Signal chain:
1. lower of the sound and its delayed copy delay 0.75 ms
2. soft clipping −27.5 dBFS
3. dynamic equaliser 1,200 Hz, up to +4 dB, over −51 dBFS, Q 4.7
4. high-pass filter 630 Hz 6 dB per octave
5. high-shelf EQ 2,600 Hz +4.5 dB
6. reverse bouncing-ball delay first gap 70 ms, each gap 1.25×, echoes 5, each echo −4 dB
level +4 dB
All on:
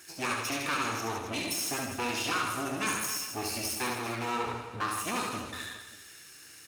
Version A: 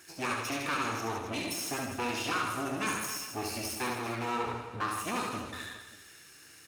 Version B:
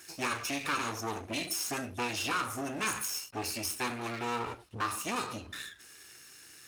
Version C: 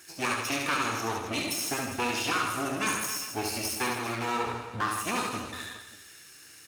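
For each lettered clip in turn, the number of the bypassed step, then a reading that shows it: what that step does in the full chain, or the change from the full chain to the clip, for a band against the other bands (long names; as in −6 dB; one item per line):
5, 8 kHz band −3.5 dB
6, change in integrated loudness −2.0 LU
2, distortion level −15 dB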